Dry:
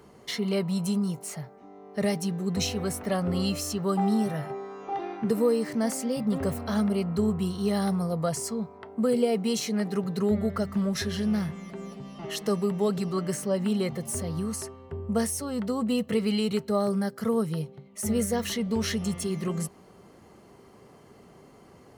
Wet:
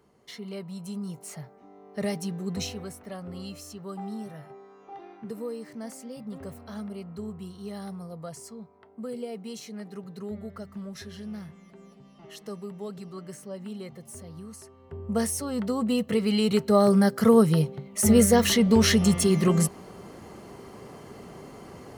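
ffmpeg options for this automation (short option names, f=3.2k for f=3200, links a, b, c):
-af "volume=17dB,afade=t=in:st=0.84:d=0.57:silence=0.421697,afade=t=out:st=2.52:d=0.44:silence=0.375837,afade=t=in:st=14.65:d=0.64:silence=0.237137,afade=t=in:st=16.26:d=0.86:silence=0.421697"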